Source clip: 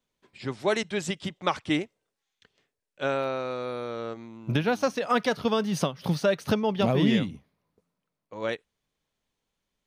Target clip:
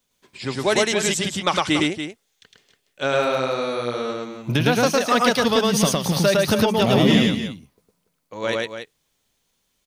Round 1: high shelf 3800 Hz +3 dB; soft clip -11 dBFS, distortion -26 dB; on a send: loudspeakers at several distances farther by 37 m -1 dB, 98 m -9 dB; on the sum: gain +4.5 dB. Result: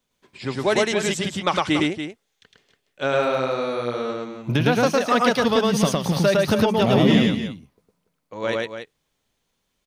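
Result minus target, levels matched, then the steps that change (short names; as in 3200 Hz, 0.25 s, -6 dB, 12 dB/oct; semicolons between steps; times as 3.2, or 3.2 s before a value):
8000 Hz band -5.5 dB
change: high shelf 3800 Hz +11 dB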